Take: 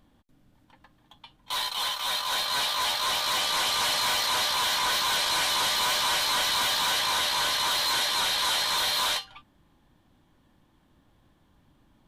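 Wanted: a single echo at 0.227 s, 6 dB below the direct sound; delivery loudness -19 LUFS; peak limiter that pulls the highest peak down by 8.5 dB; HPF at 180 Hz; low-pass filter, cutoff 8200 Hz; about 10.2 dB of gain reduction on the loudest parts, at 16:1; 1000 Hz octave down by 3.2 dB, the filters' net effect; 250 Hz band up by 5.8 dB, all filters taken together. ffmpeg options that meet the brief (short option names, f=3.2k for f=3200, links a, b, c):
-af "highpass=180,lowpass=8.2k,equalizer=f=250:t=o:g=9,equalizer=f=1k:t=o:g=-4,acompressor=threshold=-35dB:ratio=16,alimiter=level_in=10dB:limit=-24dB:level=0:latency=1,volume=-10dB,aecho=1:1:227:0.501,volume=18dB"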